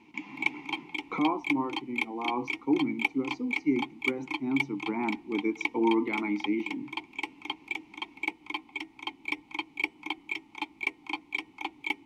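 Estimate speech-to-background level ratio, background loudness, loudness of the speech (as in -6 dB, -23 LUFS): 3.5 dB, -35.0 LUFS, -31.5 LUFS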